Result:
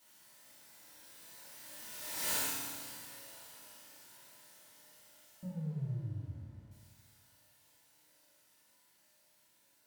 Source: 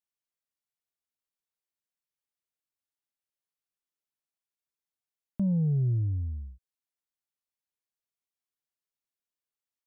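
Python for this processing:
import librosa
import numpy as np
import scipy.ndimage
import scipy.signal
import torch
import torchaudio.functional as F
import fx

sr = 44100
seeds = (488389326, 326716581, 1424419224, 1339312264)

y = x + 0.5 * 10.0 ** (-41.0 / 20.0) * np.sign(x)
y = fx.doppler_pass(y, sr, speed_mps=27, closest_m=2.2, pass_at_s=2.3)
y = fx.low_shelf(y, sr, hz=200.0, db=-5.0)
y = fx.rev_fdn(y, sr, rt60_s=1.3, lf_ratio=1.45, hf_ratio=0.75, size_ms=10.0, drr_db=-9.0)
y = y * librosa.db_to_amplitude(10.5)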